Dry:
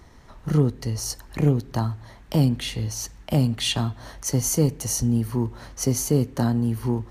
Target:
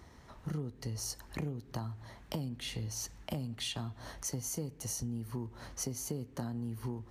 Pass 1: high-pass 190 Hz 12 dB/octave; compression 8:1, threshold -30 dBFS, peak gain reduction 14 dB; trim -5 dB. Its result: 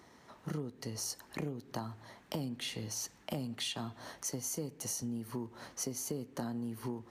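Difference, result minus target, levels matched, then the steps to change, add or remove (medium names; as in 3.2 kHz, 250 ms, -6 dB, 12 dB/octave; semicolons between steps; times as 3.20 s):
125 Hz band -4.5 dB
change: high-pass 48 Hz 12 dB/octave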